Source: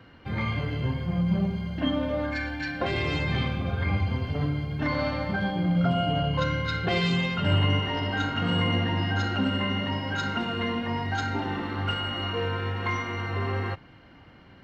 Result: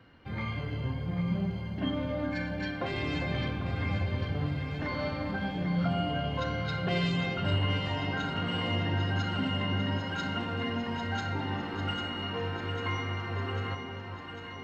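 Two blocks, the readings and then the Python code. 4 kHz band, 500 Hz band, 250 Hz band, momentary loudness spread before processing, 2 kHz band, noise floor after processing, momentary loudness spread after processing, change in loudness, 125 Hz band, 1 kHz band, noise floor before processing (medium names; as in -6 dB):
-4.5 dB, -4.5 dB, -4.5 dB, 5 LU, -5.0 dB, -41 dBFS, 5 LU, -4.5 dB, -4.5 dB, -5.0 dB, -51 dBFS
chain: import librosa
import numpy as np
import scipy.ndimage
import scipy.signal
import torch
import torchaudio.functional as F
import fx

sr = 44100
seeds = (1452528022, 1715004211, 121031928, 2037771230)

y = fx.echo_alternate(x, sr, ms=399, hz=900.0, feedback_pct=83, wet_db=-6.5)
y = F.gain(torch.from_numpy(y), -6.0).numpy()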